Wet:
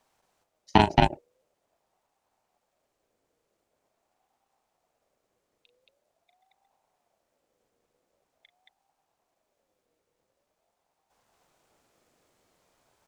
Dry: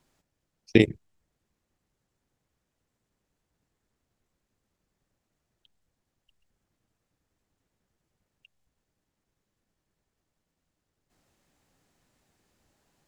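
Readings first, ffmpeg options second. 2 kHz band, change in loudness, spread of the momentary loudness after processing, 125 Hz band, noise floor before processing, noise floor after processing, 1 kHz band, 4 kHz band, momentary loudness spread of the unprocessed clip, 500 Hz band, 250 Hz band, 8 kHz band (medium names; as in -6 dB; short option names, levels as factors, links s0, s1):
+1.0 dB, +0.5 dB, 5 LU, +2.5 dB, -83 dBFS, -80 dBFS, +29.0 dB, +5.5 dB, 3 LU, -1.5 dB, -2.0 dB, no reading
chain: -af "aecho=1:1:37.9|224.5:0.316|0.891,aeval=exprs='val(0)*sin(2*PI*630*n/s+630*0.25/0.45*sin(2*PI*0.45*n/s))':c=same,volume=1.26"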